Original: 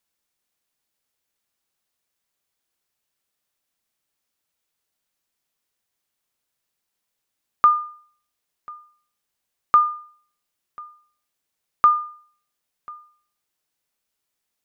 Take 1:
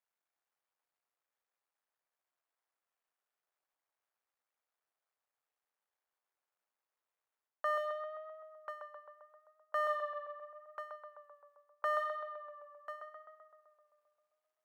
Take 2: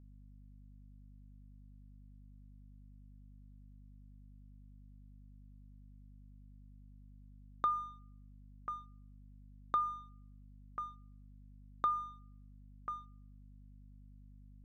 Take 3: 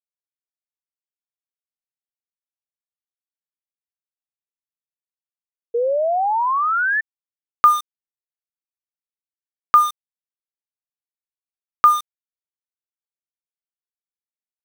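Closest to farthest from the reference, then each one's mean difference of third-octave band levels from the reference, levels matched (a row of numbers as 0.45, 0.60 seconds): 3, 2, 1; 4.0, 5.5, 8.5 decibels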